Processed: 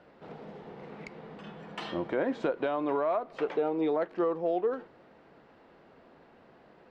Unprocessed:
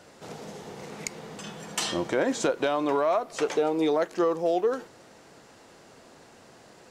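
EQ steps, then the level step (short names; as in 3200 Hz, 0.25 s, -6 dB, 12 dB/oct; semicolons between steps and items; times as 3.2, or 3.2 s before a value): air absorption 400 m; bell 110 Hz -12 dB 0.25 oct; -3.0 dB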